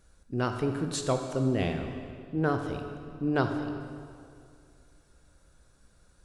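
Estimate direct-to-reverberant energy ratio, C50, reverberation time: 5.0 dB, 6.0 dB, 2.3 s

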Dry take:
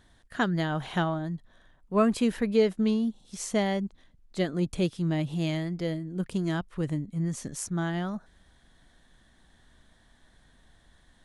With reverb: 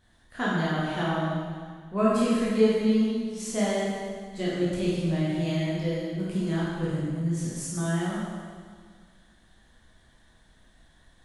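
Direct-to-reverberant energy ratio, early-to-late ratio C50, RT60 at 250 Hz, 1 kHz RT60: −8.0 dB, −2.5 dB, 1.9 s, 1.8 s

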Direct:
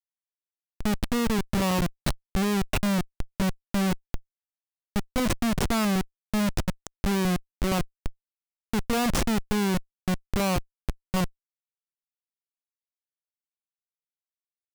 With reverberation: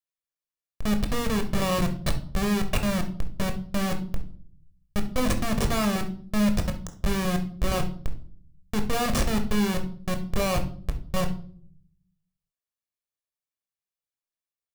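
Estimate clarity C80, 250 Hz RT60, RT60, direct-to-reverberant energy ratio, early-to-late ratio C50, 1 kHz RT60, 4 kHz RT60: 17.0 dB, 0.95 s, 0.55 s, 5.5 dB, 11.0 dB, 0.45 s, 0.40 s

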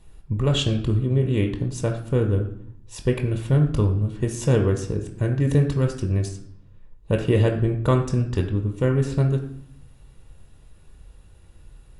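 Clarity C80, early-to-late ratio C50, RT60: 12.0 dB, 9.5 dB, 0.65 s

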